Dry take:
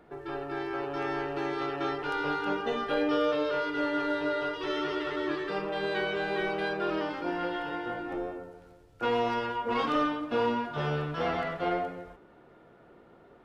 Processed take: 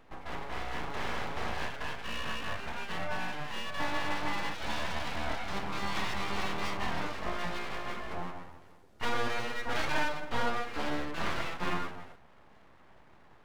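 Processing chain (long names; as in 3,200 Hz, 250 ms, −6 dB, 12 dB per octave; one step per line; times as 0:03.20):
0:01.68–0:03.80: phaser with its sweep stopped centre 1,600 Hz, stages 4
full-wave rectification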